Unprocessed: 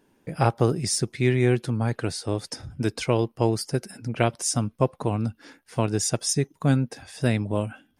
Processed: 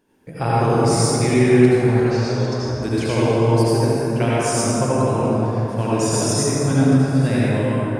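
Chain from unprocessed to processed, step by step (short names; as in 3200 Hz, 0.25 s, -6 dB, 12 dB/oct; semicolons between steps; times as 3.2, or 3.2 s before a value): 1.92–2.57 elliptic band-pass 400–6200 Hz; reverb RT60 3.7 s, pre-delay 63 ms, DRR -9.5 dB; gain -3 dB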